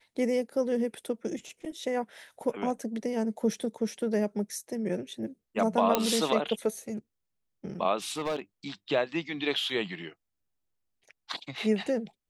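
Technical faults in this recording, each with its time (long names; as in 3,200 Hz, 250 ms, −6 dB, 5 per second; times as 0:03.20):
0:05.95: click −8 dBFS
0:08.09–0:08.39: clipping −26.5 dBFS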